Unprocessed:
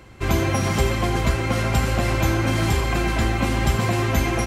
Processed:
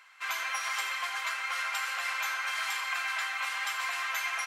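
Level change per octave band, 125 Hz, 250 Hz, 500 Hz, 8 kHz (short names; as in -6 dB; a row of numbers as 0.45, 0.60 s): under -40 dB, under -40 dB, -27.0 dB, -7.0 dB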